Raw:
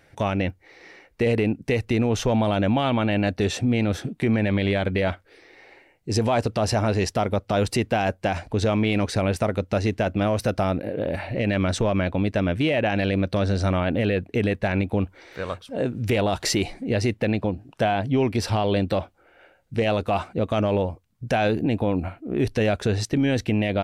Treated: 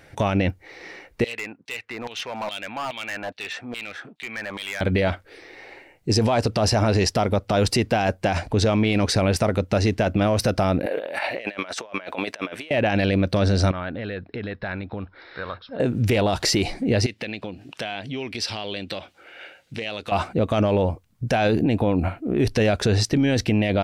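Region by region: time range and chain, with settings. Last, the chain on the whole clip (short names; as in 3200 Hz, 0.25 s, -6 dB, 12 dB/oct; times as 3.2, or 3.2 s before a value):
1.24–4.81 LFO band-pass saw down 2.4 Hz 840–4100 Hz + hard clip -31.5 dBFS
10.86–12.71 HPF 660 Hz + negative-ratio compressor -36 dBFS, ratio -0.5
13.71–15.8 compressor 3:1, threshold -27 dBFS + rippled Chebyshev low-pass 5400 Hz, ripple 9 dB
17.06–20.12 weighting filter D + compressor 2.5:1, threshold -41 dBFS
whole clip: dynamic EQ 5000 Hz, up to +6 dB, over -49 dBFS, Q 3; limiter -18.5 dBFS; gain +6.5 dB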